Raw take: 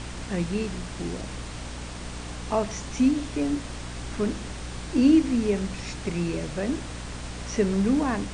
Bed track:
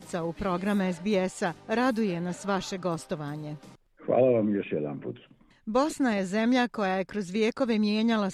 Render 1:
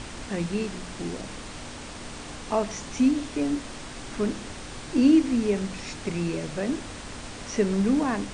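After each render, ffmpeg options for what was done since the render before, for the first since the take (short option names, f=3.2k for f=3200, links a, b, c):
-af "bandreject=f=60:t=h:w=6,bandreject=f=120:t=h:w=6,bandreject=f=180:t=h:w=6"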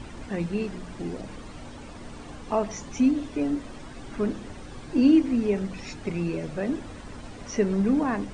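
-af "afftdn=nr=11:nf=-40"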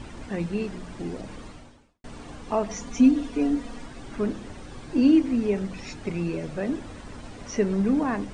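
-filter_complex "[0:a]asettb=1/sr,asplit=3[a][b][c];[a]atrim=end=2.694[d];[b]atrim=start=2.69:end=3.86,asetpts=PTS-STARTPTS,afade=t=in:d=0.004:c=qsin,afade=t=out:st=1.166:d=0.004:c=qsin,aecho=1:1:4.2:0.71,atrim=end_sample=51597[e];[c]atrim=start=3.856[f];[d][e]acrossfade=d=0.004:c1=hsin:c2=qsin[g];[g][f]acrossfade=d=0.004:c1=qsin:c2=hsin,asplit=2[h][i];[h]atrim=end=2.04,asetpts=PTS-STARTPTS,afade=t=out:st=1.46:d=0.58:c=qua[j];[i]atrim=start=2.04,asetpts=PTS-STARTPTS,afade=t=in:d=0.004:c=hsin[k];[j][k]concat=n=2:v=0:a=1"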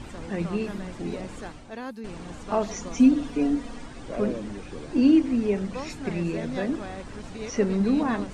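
-filter_complex "[1:a]volume=-11dB[a];[0:a][a]amix=inputs=2:normalize=0"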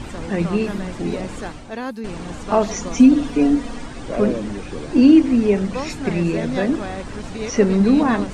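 -af "volume=8dB,alimiter=limit=-3dB:level=0:latency=1"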